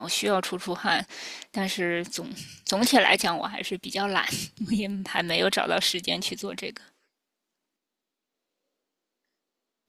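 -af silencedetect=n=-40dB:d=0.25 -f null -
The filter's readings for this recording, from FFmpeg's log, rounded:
silence_start: 6.77
silence_end: 9.88 | silence_duration: 3.11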